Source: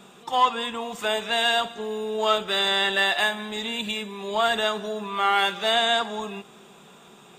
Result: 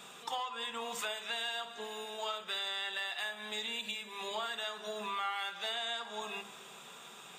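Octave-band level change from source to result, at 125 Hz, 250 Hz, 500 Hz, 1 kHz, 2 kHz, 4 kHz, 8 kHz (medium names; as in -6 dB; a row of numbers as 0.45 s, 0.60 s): no reading, -18.5 dB, -16.5 dB, -15.5 dB, -13.5 dB, -12.0 dB, -8.0 dB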